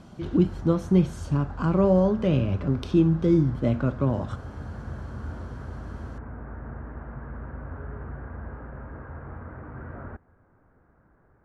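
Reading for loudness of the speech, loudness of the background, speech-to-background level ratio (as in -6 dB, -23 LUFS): -23.5 LUFS, -39.0 LUFS, 15.5 dB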